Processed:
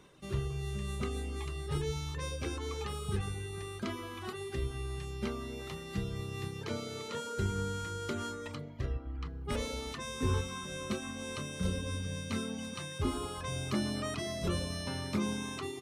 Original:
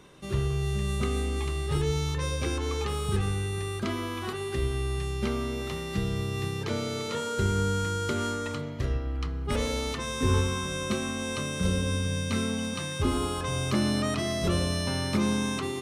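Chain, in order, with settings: reverb removal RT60 0.75 s; 8.78–9.25 s: low-pass 4.4 kHz -> 2.4 kHz 6 dB/octave; trim -5.5 dB

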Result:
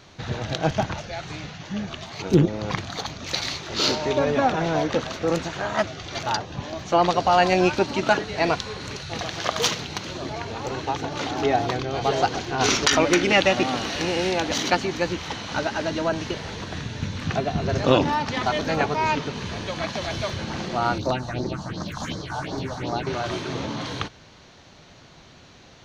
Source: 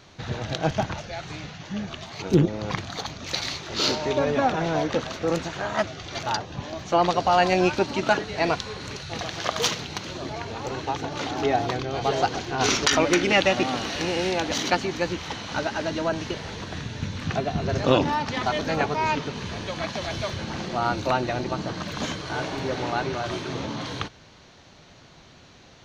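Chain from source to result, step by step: 20.98–23.07 s: phase shifter stages 4, 2.7 Hz, lowest notch 350–2700 Hz; trim +1.5 dB

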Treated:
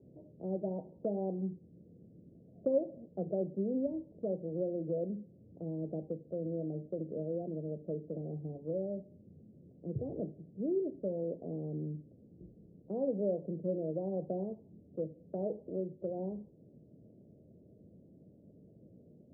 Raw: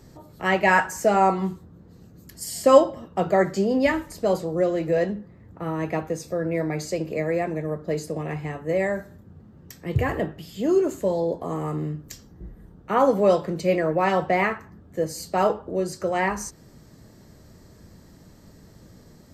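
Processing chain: dynamic bell 190 Hz, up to +4 dB, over -35 dBFS, Q 0.99; steep low-pass 620 Hz 48 dB/octave; compression 1.5:1, threshold -37 dBFS, peak gain reduction 10.5 dB; high-pass 130 Hz 12 dB/octave; trim -6.5 dB

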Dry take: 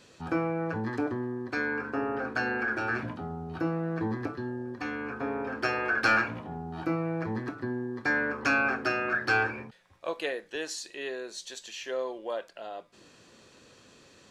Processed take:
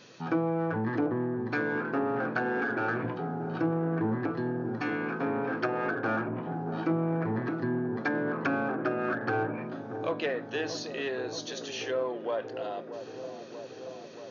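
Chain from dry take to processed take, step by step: low-pass that closes with the level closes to 780 Hz, closed at -24.5 dBFS; feedback echo behind a low-pass 631 ms, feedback 76%, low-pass 830 Hz, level -10 dB; in parallel at -6 dB: saturation -33.5 dBFS, distortion -9 dB; on the sum: FFT band-pass 100–6800 Hz

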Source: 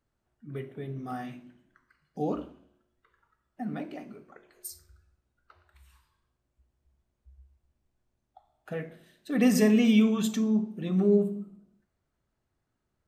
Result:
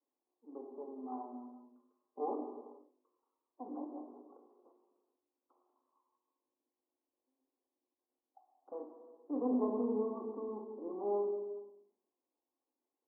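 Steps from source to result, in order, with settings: partial rectifier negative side -12 dB; 0.65–2.34 s: comb 4.9 ms, depth 86%; Chebyshev band-pass 250–1100 Hz, order 5; band-stop 630 Hz, Q 12; gated-style reverb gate 500 ms falling, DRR 3.5 dB; trim -4 dB

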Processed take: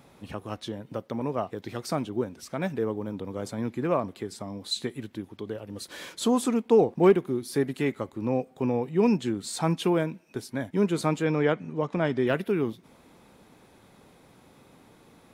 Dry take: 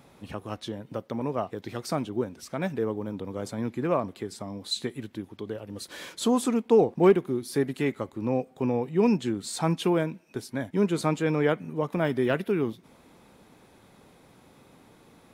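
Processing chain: 11.25–12.27 s: low-pass 7.5 kHz 24 dB/octave

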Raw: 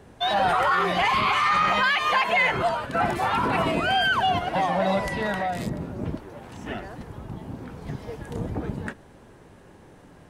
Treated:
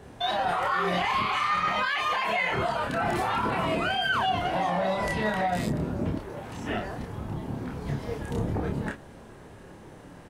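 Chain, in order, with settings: peak limiter -22 dBFS, peak gain reduction 10.5 dB; doubling 28 ms -2.5 dB; trim +1 dB

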